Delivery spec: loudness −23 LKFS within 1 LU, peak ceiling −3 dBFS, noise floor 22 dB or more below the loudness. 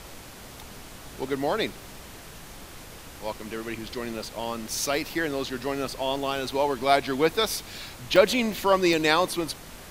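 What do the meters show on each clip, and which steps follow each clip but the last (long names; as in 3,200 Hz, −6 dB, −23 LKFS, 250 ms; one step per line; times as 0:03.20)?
number of dropouts 2; longest dropout 2.3 ms; background noise floor −44 dBFS; target noise floor −48 dBFS; integrated loudness −26.0 LKFS; sample peak −3.5 dBFS; target loudness −23.0 LKFS
→ repair the gap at 0:08.16/0:08.93, 2.3 ms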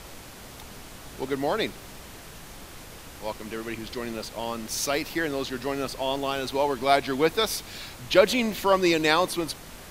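number of dropouts 0; background noise floor −44 dBFS; target noise floor −48 dBFS
→ noise reduction from a noise print 6 dB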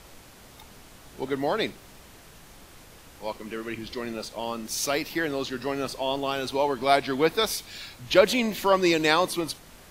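background noise floor −50 dBFS; integrated loudness −26.0 LKFS; sample peak −3.5 dBFS; target loudness −23.0 LKFS
→ level +3 dB
brickwall limiter −3 dBFS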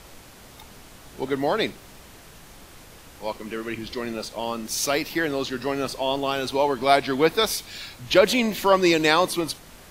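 integrated loudness −23.5 LKFS; sample peak −3.0 dBFS; background noise floor −47 dBFS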